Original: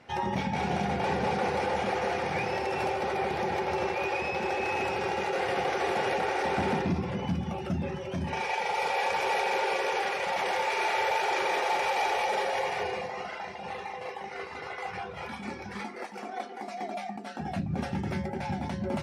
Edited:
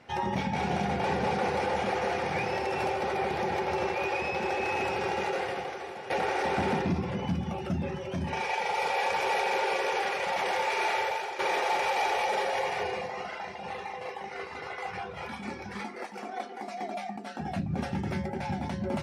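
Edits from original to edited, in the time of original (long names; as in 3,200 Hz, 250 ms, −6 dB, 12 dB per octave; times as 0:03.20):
0:05.29–0:06.10: fade out quadratic, to −13 dB
0:10.91–0:11.39: fade out, to −12 dB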